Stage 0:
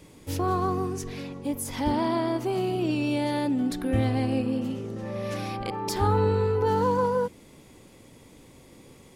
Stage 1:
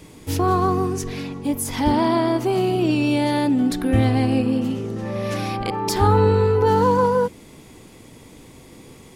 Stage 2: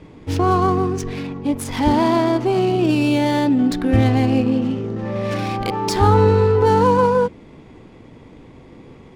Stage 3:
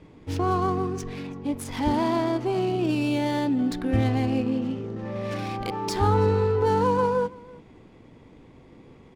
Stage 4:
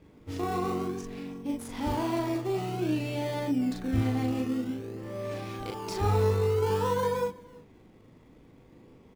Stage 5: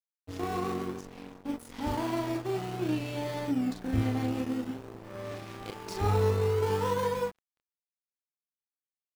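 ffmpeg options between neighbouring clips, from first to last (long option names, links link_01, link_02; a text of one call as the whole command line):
ffmpeg -i in.wav -af "bandreject=frequency=550:width=12,volume=7dB" out.wav
ffmpeg -i in.wav -af "adynamicsmooth=sensitivity=6:basefreq=2300,volume=2.5dB" out.wav
ffmpeg -i in.wav -af "aecho=1:1:330:0.0708,volume=-7.5dB" out.wav
ffmpeg -i in.wav -filter_complex "[0:a]asplit=2[link_01][link_02];[link_02]acrusher=samples=22:mix=1:aa=0.000001:lfo=1:lforange=13.2:lforate=0.52,volume=-8.5dB[link_03];[link_01][link_03]amix=inputs=2:normalize=0,asplit=2[link_04][link_05];[link_05]adelay=39,volume=-2.5dB[link_06];[link_04][link_06]amix=inputs=2:normalize=0,volume=-9dB" out.wav
ffmpeg -i in.wav -af "aeval=exprs='sgn(val(0))*max(abs(val(0))-0.00944,0)':channel_layout=same" out.wav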